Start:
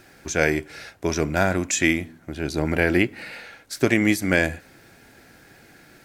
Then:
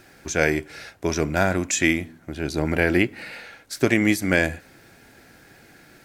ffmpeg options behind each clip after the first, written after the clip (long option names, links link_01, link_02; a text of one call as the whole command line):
ffmpeg -i in.wav -af anull out.wav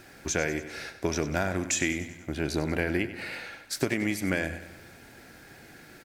ffmpeg -i in.wav -filter_complex "[0:a]acompressor=threshold=-24dB:ratio=6,asplit=2[link_01][link_02];[link_02]aecho=0:1:96|192|288|384|480|576:0.224|0.123|0.0677|0.0372|0.0205|0.0113[link_03];[link_01][link_03]amix=inputs=2:normalize=0" out.wav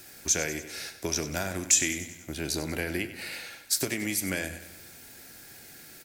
ffmpeg -i in.wav -filter_complex "[0:a]acrossover=split=400|1800[link_01][link_02][link_03];[link_03]crystalizer=i=4:c=0[link_04];[link_01][link_02][link_04]amix=inputs=3:normalize=0,flanger=delay=8.2:depth=5:regen=-80:speed=1.1:shape=triangular" out.wav